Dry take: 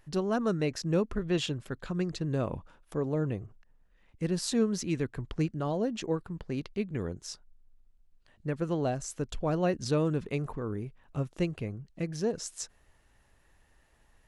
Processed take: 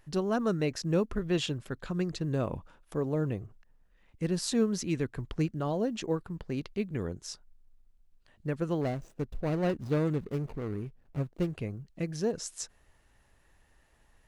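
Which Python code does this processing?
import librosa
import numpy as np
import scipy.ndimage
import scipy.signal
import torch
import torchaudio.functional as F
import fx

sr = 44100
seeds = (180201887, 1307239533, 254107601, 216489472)

y = fx.median_filter(x, sr, points=41, at=(8.81, 11.53))
y = fx.quant_float(y, sr, bits=6)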